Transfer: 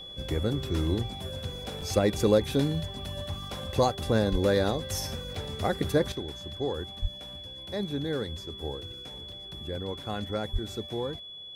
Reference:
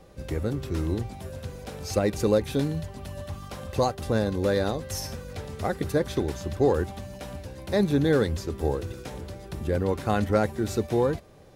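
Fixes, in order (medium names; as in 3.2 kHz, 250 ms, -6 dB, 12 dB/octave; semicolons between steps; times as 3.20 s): band-stop 3.4 kHz, Q 30; de-plosive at 4.31/7.01/10.52 s; interpolate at 1.81/5.35/5.84/9.32/10.03 s, 3.8 ms; trim 0 dB, from 6.12 s +9.5 dB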